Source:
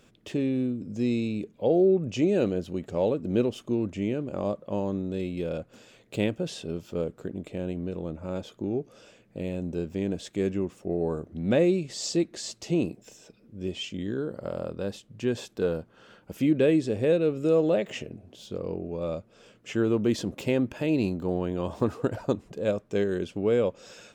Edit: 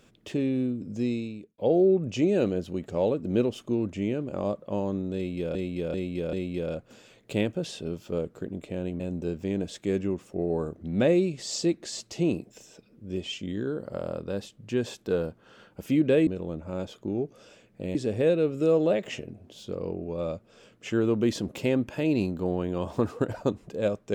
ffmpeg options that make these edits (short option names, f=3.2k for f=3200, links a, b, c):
-filter_complex "[0:a]asplit=8[a][b][c][d][e][f][g][h];[a]atrim=end=1.58,asetpts=PTS-STARTPTS,afade=t=out:st=0.96:d=0.62[i];[b]atrim=start=1.58:end=5.552,asetpts=PTS-STARTPTS,afade=t=in:d=0.004:c=hsin[j];[c]atrim=start=5.158:end=5.552[k];[d]atrim=start=5.158:end=5.552[l];[e]atrim=start=5.158:end=7.832[m];[f]atrim=start=9.508:end=16.782[n];[g]atrim=start=7.828:end=9.512[o];[h]atrim=start=16.778[p];[i][j]concat=n=2:v=0:a=1[q];[q][k]acrossfade=d=0.004:c1=hsin:c2=hsin[r];[r][l]acrossfade=d=0.004:c1=hsin:c2=hsin[s];[s][m]acrossfade=d=0.004:c1=hsin:c2=hsin[t];[t][n]acrossfade=d=0.004:c1=hsin:c2=hsin[u];[u][o]acrossfade=d=0.004:c1=hsin:c2=hsin[v];[v][p]acrossfade=d=0.004:c1=hsin:c2=hsin"